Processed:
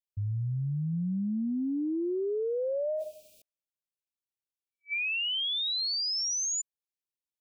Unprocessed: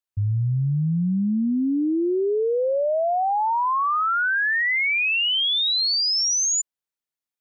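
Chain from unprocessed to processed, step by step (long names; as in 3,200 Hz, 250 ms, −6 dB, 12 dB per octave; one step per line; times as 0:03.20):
brick-wall band-stop 620–2,300 Hz
0:00.93–0:03.42: envelope flattener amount 100%
level −9 dB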